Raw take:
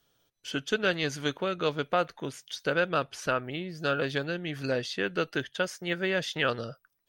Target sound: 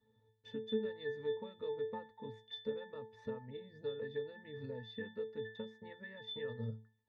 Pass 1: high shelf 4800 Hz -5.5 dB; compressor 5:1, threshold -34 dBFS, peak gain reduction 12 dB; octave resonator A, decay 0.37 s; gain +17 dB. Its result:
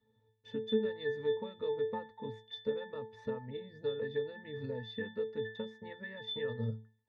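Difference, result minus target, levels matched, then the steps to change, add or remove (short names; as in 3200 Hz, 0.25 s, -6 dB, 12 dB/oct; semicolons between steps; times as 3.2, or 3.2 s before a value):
compressor: peak gain reduction -5 dB
change: compressor 5:1, threshold -40.5 dBFS, peak gain reduction 17 dB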